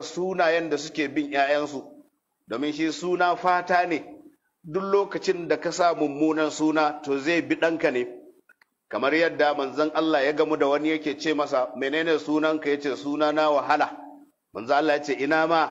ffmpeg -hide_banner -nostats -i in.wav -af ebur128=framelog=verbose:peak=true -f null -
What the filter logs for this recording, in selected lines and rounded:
Integrated loudness:
  I:         -24.1 LUFS
  Threshold: -34.8 LUFS
Loudness range:
  LRA:         2.0 LU
  Threshold: -44.8 LUFS
  LRA low:   -25.9 LUFS
  LRA high:  -23.9 LUFS
True peak:
  Peak:       -8.1 dBFS